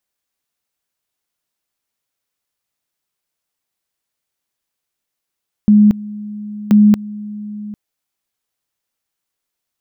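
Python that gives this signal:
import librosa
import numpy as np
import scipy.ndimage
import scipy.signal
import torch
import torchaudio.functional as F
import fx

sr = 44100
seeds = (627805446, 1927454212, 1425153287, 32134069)

y = fx.two_level_tone(sr, hz=209.0, level_db=-5.0, drop_db=19.5, high_s=0.23, low_s=0.8, rounds=2)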